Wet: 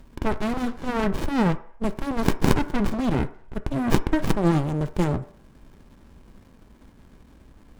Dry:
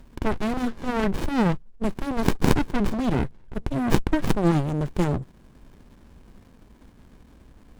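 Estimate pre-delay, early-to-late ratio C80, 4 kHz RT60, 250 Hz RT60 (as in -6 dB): 3 ms, 19.0 dB, 0.60 s, 0.45 s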